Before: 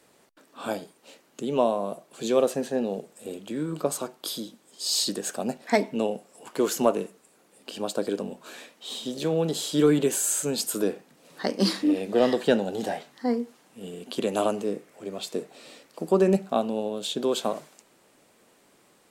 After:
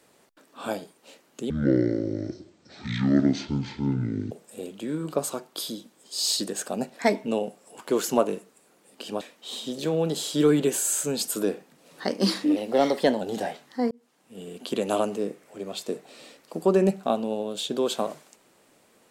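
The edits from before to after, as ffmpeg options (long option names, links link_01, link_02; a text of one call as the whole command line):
ffmpeg -i in.wav -filter_complex "[0:a]asplit=7[link_01][link_02][link_03][link_04][link_05][link_06][link_07];[link_01]atrim=end=1.504[link_08];[link_02]atrim=start=1.5:end=2.99,asetpts=PTS-STARTPTS,asetrate=23373,aresample=44100,atrim=end_sample=123979,asetpts=PTS-STARTPTS[link_09];[link_03]atrim=start=2.986:end=7.892[link_10];[link_04]atrim=start=8.598:end=11.954[link_11];[link_05]atrim=start=11.95:end=12.67,asetpts=PTS-STARTPTS,asetrate=48951,aresample=44100,atrim=end_sample=28605,asetpts=PTS-STARTPTS[link_12];[link_06]atrim=start=12.666:end=13.37,asetpts=PTS-STARTPTS,afade=type=out:start_time=0.7:duration=0.004:curve=hsin[link_13];[link_07]atrim=start=13.37,asetpts=PTS-STARTPTS,afade=type=in:duration=0.61[link_14];[link_08][link_09]acrossfade=duration=0.004:curve1=hsin:curve2=hsin[link_15];[link_15][link_10]acrossfade=duration=0.004:curve1=hsin:curve2=hsin[link_16];[link_16][link_11]acrossfade=duration=0.004:curve1=hsin:curve2=hsin[link_17];[link_17][link_12]acrossfade=duration=0.004:curve1=hsin:curve2=hsin[link_18];[link_13][link_14]concat=n=2:v=0:a=1[link_19];[link_18][link_19]acrossfade=duration=0.004:curve1=hsin:curve2=hsin" out.wav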